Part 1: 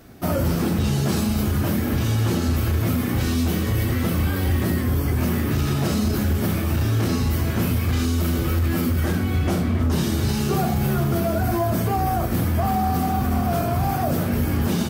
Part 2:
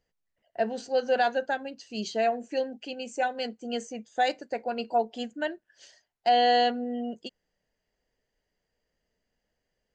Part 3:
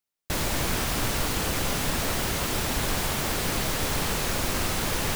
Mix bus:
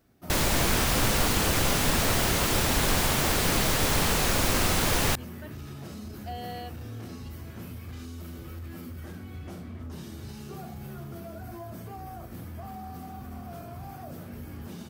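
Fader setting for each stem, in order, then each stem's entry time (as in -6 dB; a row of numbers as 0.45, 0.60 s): -19.0, -17.5, +2.5 dB; 0.00, 0.00, 0.00 s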